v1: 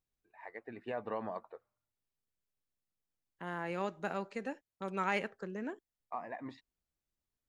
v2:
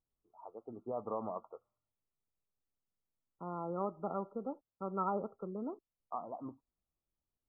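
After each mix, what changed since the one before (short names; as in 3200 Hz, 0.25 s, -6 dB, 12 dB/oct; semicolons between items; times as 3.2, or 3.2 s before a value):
master: add brick-wall FIR low-pass 1400 Hz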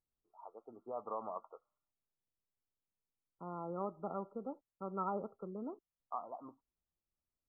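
first voice: add tilt +4.5 dB/oct; second voice -3.0 dB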